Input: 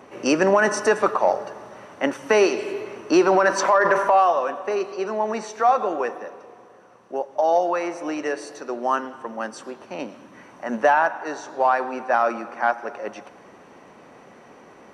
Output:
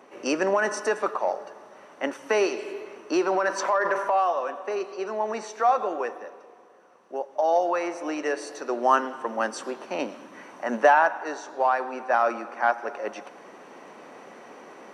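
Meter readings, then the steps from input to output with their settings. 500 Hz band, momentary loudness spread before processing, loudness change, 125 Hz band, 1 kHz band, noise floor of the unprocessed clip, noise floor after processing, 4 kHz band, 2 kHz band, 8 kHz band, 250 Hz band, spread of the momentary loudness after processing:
-4.5 dB, 16 LU, -4.0 dB, under -10 dB, -3.0 dB, -48 dBFS, -51 dBFS, -4.0 dB, -3.5 dB, -4.5 dB, -6.0 dB, 20 LU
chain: HPF 250 Hz 12 dB/oct; vocal rider 2 s; gain -5 dB

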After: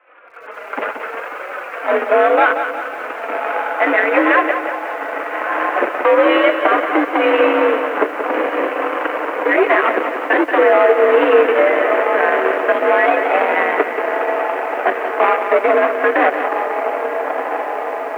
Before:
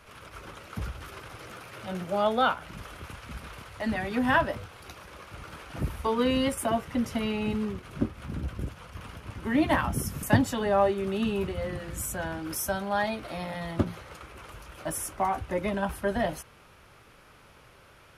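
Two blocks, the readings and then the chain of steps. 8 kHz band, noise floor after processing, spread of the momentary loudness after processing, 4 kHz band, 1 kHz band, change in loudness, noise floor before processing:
under -10 dB, -29 dBFS, 11 LU, +7.5 dB, +15.5 dB, +13.5 dB, -55 dBFS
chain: flange 0.68 Hz, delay 4 ms, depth 1.4 ms, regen +5%; AGC gain up to 15 dB; air absorption 110 m; on a send: diffused feedback echo 1.283 s, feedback 78%, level -12 dB; on the sum: added harmonics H 2 -10 dB, 4 -26 dB, 6 -44 dB, 7 -18 dB, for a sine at -1.5 dBFS; in parallel at -9.5 dB: decimation with a swept rate 33×, swing 60% 0.81 Hz; on the sum: compressor 4:1, threshold -20 dBFS, peak gain reduction 12.5 dB; dynamic EQ 820 Hz, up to -6 dB, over -41 dBFS, Q 2.2; soft clip -21.5 dBFS, distortion -9 dB; mistuned SSB +64 Hz 370–2400 Hz; maximiser +26.5 dB; lo-fi delay 0.181 s, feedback 55%, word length 7-bit, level -8.5 dB; gain -3 dB

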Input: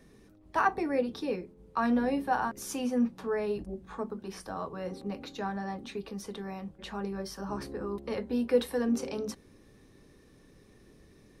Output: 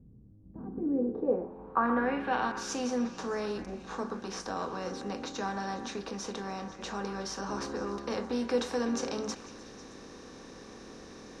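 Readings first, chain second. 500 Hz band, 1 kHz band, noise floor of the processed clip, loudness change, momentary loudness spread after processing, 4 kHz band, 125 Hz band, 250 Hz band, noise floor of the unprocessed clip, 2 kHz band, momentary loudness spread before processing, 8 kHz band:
-1.0 dB, -0.5 dB, -50 dBFS, -1.0 dB, 18 LU, +3.5 dB, -1.5 dB, -1.5 dB, -59 dBFS, 0.0 dB, 12 LU, +4.0 dB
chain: per-bin compression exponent 0.6; dynamic EQ 7300 Hz, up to +4 dB, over -56 dBFS, Q 2.5; low-pass sweep 120 Hz -> 5900 Hz, 0.35–2.74; delay with a stepping band-pass 0.124 s, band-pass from 1200 Hz, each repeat 0.7 oct, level -7 dB; gain -5.5 dB

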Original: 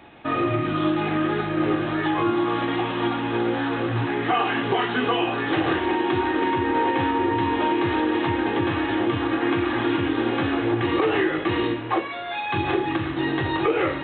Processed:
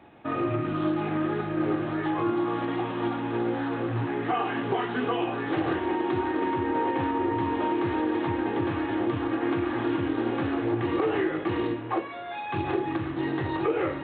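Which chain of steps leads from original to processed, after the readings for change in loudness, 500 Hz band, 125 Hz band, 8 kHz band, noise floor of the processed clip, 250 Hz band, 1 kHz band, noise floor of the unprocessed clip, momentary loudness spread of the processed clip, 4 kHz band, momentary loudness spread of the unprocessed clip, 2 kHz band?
-4.5 dB, -4.0 dB, -4.0 dB, n/a, -35 dBFS, -4.0 dB, -5.5 dB, -31 dBFS, 3 LU, -11.0 dB, 3 LU, -8.0 dB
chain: HPF 60 Hz; high shelf 2100 Hz -10.5 dB; Doppler distortion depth 0.12 ms; gain -3.5 dB

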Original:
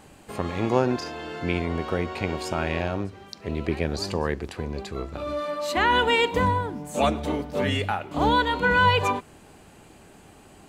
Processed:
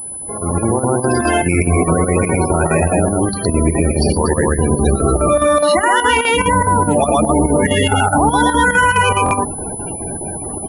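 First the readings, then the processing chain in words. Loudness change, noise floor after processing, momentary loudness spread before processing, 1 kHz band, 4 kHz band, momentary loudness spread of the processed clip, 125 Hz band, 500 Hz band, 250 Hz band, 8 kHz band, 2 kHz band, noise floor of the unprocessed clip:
+10.5 dB, -26 dBFS, 13 LU, +10.5 dB, +6.0 dB, 9 LU, +13.0 dB, +11.0 dB, +12.5 dB, +23.0 dB, +9.0 dB, -51 dBFS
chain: on a send: loudspeakers at several distances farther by 12 m -11 dB, 40 m 0 dB, 83 m -5 dB; on the sum: loudest bins only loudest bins 32; compressor, threshold -24 dBFS, peak gain reduction 12 dB; limiter -25.5 dBFS, peak gain reduction 11.5 dB; chopper 4.8 Hz, depth 60%, duty 80%; AGC gain up to 14.5 dB; notches 50/100/150/200/250 Hz; dynamic EQ 470 Hz, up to -3 dB, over -33 dBFS, Q 1.7; stuck buffer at 9.24, samples 1024, times 2; pulse-width modulation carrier 10000 Hz; gain +7 dB

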